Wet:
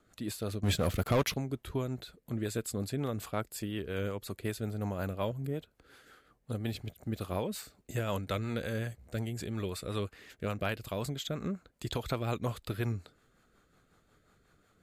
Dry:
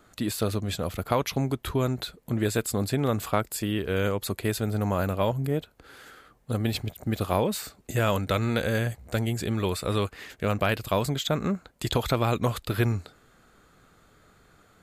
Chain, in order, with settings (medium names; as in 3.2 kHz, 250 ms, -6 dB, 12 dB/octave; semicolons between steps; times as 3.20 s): 0.63–1.34 s: waveshaping leveller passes 3; rotary cabinet horn 5.5 Hz; trim -7 dB